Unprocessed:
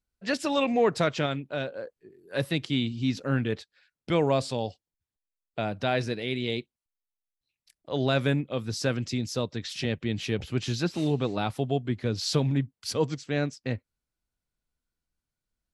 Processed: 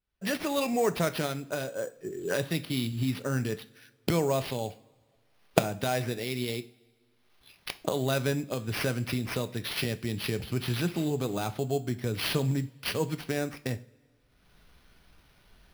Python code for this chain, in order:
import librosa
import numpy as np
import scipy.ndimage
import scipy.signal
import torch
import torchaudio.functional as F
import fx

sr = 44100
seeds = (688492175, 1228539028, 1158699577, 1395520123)

y = fx.recorder_agc(x, sr, target_db=-18.0, rise_db_per_s=37.0, max_gain_db=30)
y = fx.sample_hold(y, sr, seeds[0], rate_hz=7500.0, jitter_pct=0)
y = fx.rev_double_slope(y, sr, seeds[1], early_s=0.36, late_s=1.9, knee_db=-21, drr_db=10.5)
y = F.gain(torch.from_numpy(y), -3.5).numpy()